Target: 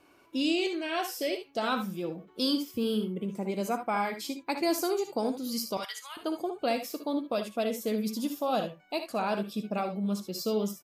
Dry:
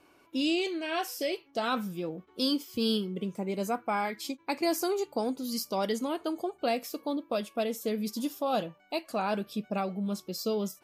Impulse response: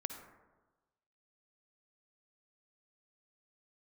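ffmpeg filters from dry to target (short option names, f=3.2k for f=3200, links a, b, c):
-filter_complex "[0:a]asettb=1/sr,asplit=3[a][b][c];[a]atrim=end=2.714[d];[b]atrim=start=2.71:end=3.29,asetpts=PTS-STARTPTS,afade=t=in:d=0.004:c=qsin,afade=t=out:st=0.576:d=0.004:c=qsin,equalizer=f=4.8k:t=o:w=1.1:g=-13[e];[c]atrim=start=3.286[f];[d][e]acrossfade=d=0.004:c1=hsin:c2=qsin[g];[g][f]acrossfade=d=0.004:c1=qsin:c2=hsin,asettb=1/sr,asplit=3[h][i][j];[h]atrim=end=5.774[k];[i]atrim=start=5.77:end=6.17,asetpts=PTS-STARTPTS,afade=t=in:d=0.004:c=qsin,afade=t=out:st=0.396:d=0.004:c=qsin,highpass=f=1.2k:w=0.5412,highpass=f=1.2k:w=1.3066[l];[j]atrim=start=6.166[m];[k][l]acrossfade=d=0.004:c1=hsin:c2=qsin[n];[n][m]acrossfade=d=0.004:c1=qsin:c2=hsin,aecho=1:1:60|74:0.266|0.282"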